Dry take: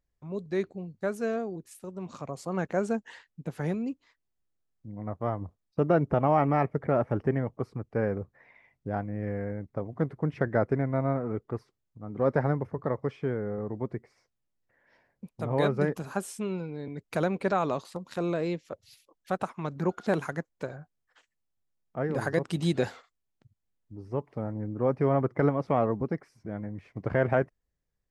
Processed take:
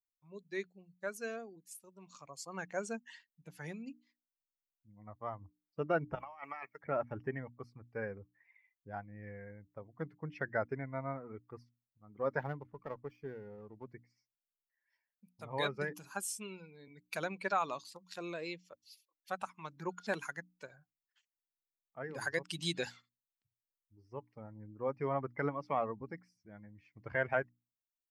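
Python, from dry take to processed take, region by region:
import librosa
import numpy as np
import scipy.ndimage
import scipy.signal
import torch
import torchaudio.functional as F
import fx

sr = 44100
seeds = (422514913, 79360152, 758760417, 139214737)

y = fx.chain(x, sr, fx.highpass(hz=1400.0, slope=6),
    fx.over_compress(threshold_db=-34.0, ratio=-0.5), at=(6.15, 6.81))
y = fx.chain(y, sr, fx.lowpass(hz=1600.0, slope=6),
    fx.running_max(window=5), at=(12.39, 13.87))
y = fx.bin_expand(y, sr, power=1.5)
y = fx.tilt_shelf(y, sr, db=-8.5, hz=810.0)
y = fx.hum_notches(y, sr, base_hz=60, count=5)
y = F.gain(torch.from_numpy(y), -4.0).numpy()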